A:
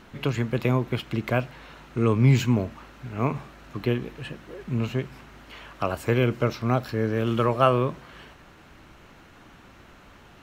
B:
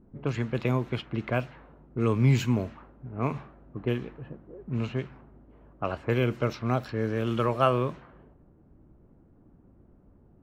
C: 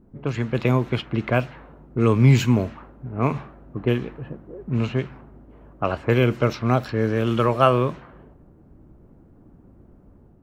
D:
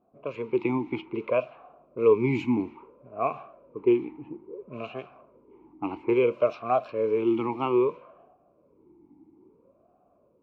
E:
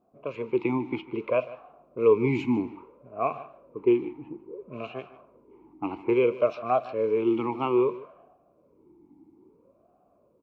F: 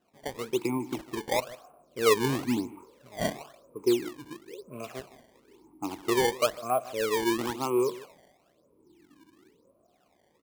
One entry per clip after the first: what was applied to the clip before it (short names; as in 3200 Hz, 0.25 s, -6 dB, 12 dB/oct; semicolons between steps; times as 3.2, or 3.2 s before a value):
low-pass opened by the level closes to 320 Hz, open at -19.5 dBFS; gain -3.5 dB
AGC gain up to 4 dB; gain +3 dB
vowel sweep a-u 0.6 Hz; gain +6 dB
echo 0.151 s -18 dB
decimation with a swept rate 19×, swing 160% 1 Hz; gain -3 dB